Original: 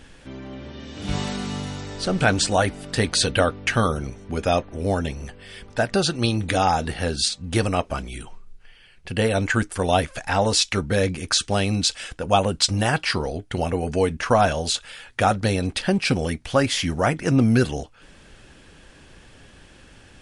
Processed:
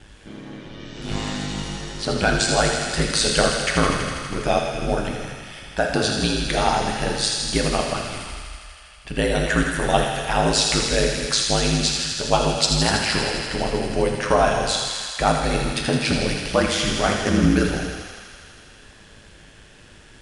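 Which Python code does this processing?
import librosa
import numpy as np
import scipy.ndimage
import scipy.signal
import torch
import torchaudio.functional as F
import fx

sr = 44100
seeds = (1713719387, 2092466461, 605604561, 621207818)

y = x * np.sin(2.0 * np.pi * 53.0 * np.arange(len(x)) / sr)
y = fx.echo_wet_highpass(y, sr, ms=81, feedback_pct=83, hz=1600.0, wet_db=-5.5)
y = fx.rev_gated(y, sr, seeds[0], gate_ms=460, shape='falling', drr_db=2.5)
y = y * 10.0 ** (1.5 / 20.0)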